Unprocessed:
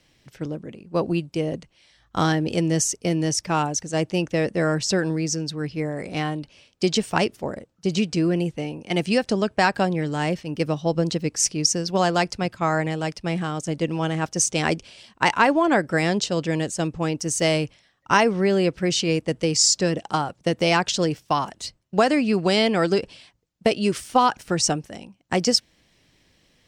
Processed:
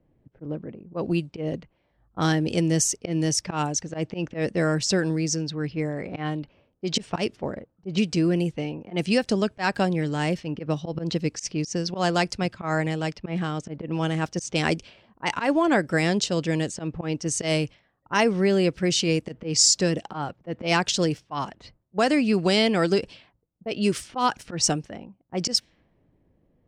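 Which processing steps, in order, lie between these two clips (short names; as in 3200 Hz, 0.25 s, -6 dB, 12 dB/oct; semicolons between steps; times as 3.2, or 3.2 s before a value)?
auto swell 0.104 s; low-pass opened by the level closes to 590 Hz, open at -20 dBFS; dynamic EQ 880 Hz, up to -3 dB, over -32 dBFS, Q 0.75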